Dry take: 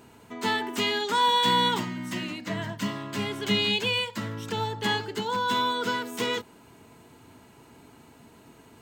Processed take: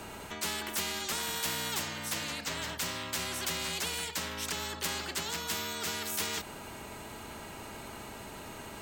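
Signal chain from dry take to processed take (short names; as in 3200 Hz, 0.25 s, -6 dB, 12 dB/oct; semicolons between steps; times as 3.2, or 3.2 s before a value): frequency shift -31 Hz; spectral compressor 4:1; gain -3.5 dB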